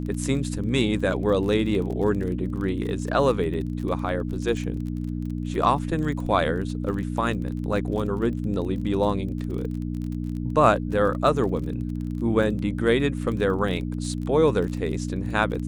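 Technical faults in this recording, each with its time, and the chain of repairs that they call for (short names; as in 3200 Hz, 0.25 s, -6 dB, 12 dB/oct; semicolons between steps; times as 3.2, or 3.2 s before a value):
crackle 31/s -32 dBFS
hum 60 Hz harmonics 5 -29 dBFS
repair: de-click; de-hum 60 Hz, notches 5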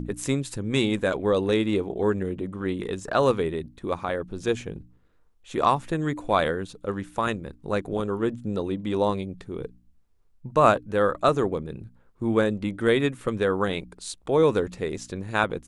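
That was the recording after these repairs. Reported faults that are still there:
none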